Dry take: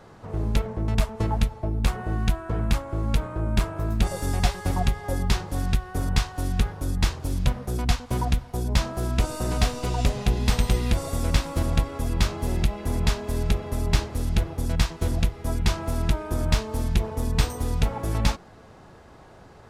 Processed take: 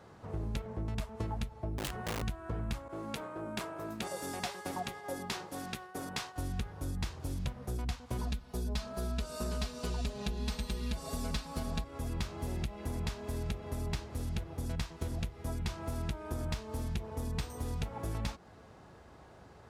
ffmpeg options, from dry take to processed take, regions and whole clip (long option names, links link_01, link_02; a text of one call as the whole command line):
ffmpeg -i in.wav -filter_complex "[0:a]asettb=1/sr,asplit=3[link_01][link_02][link_03];[link_01]atrim=end=1.784[link_04];[link_02]atrim=start=1.78:end=2.22,asetpts=PTS-STARTPTS,afade=type=in:duration=0.004:curve=qsin,afade=type=out:start_time=0.436:duration=0.004:curve=qsin,acompressor=threshold=-23dB:ratio=3:attack=3.2:release=140:knee=1:detection=peak,aeval=exprs='(mod(13.3*val(0)+1,2)-1)/13.3':channel_layout=same[link_05];[link_03]atrim=start=2.216[link_06];[link_04][link_05]acrossfade=duration=0.004:curve1=hsin:curve2=qsin[link_07];[link_07][link_06]acrossfade=duration=0.004:curve1=qsin:curve2=hsin,asettb=1/sr,asplit=3[link_08][link_09][link_10];[link_08]atrim=end=2.884[link_11];[link_09]atrim=start=2.88:end=6.36,asetpts=PTS-STARTPTS,afade=type=in:duration=0.004:curve=qsin,afade=type=out:start_time=3.476:duration=0.004:curve=qsin,agate=range=-33dB:threshold=-36dB:ratio=3:release=100:detection=peak,highpass=260[link_12];[link_10]atrim=start=6.356[link_13];[link_11][link_12]acrossfade=duration=0.004:curve1=hsin:curve2=qsin[link_14];[link_14][link_13]acrossfade=duration=0.004:curve1=qsin:curve2=hsin,asettb=1/sr,asplit=3[link_15][link_16][link_17];[link_15]atrim=end=8.184[link_18];[link_16]atrim=start=8.18:end=11.84,asetpts=PTS-STARTPTS,afade=type=in:duration=0.004:curve=qsin,afade=type=out:start_time=3.656:duration=0.004:curve=qsin,equalizer=frequency=4300:width=3:gain=5,bandreject=frequency=2000:width=14,aecho=1:1:4.7:0.99,atrim=end_sample=161406[link_19];[link_17]atrim=start=11.836[link_20];[link_18][link_19]acrossfade=duration=0.004:curve1=hsin:curve2=qsin[link_21];[link_21][link_20]acrossfade=duration=0.004:curve1=qsin:curve2=hsin,highpass=47,equalizer=frequency=64:width=5.9:gain=6,acompressor=threshold=-26dB:ratio=6,volume=-6.5dB" out.wav